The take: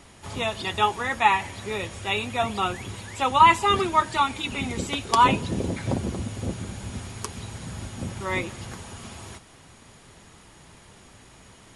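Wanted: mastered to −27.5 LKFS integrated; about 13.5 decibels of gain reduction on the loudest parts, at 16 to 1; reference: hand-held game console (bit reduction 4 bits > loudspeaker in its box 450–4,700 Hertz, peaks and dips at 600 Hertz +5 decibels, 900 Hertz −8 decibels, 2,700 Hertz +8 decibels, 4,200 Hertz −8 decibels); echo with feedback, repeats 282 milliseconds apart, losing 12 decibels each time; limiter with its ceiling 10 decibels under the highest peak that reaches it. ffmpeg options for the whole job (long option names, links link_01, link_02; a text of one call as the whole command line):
ffmpeg -i in.wav -af "acompressor=threshold=-23dB:ratio=16,alimiter=limit=-20.5dB:level=0:latency=1,aecho=1:1:282|564|846:0.251|0.0628|0.0157,acrusher=bits=3:mix=0:aa=0.000001,highpass=450,equalizer=frequency=600:width_type=q:width=4:gain=5,equalizer=frequency=900:width_type=q:width=4:gain=-8,equalizer=frequency=2700:width_type=q:width=4:gain=8,equalizer=frequency=4200:width_type=q:width=4:gain=-8,lowpass=frequency=4700:width=0.5412,lowpass=frequency=4700:width=1.3066,volume=5.5dB" out.wav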